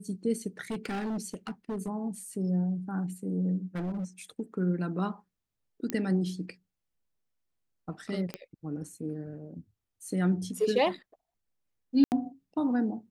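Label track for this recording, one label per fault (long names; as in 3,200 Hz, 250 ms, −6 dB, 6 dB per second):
0.700000	1.890000	clipping −30 dBFS
3.750000	4.050000	clipping −30.5 dBFS
5.900000	5.900000	click −15 dBFS
8.340000	8.340000	click −20 dBFS
12.040000	12.120000	drop-out 79 ms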